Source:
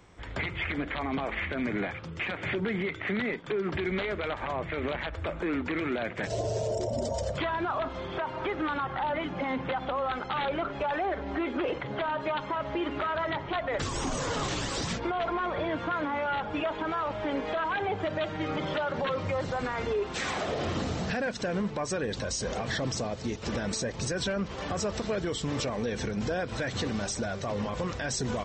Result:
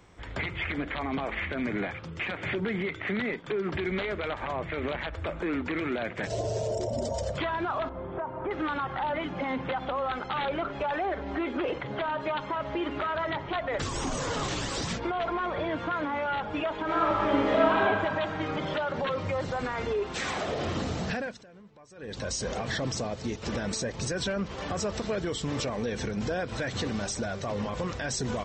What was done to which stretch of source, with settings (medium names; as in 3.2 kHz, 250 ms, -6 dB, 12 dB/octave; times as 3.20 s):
7.89–8.51 s: low-pass 1.1 kHz
16.83–17.79 s: reverb throw, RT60 2.3 s, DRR -4.5 dB
21.12–22.27 s: dip -22 dB, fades 0.32 s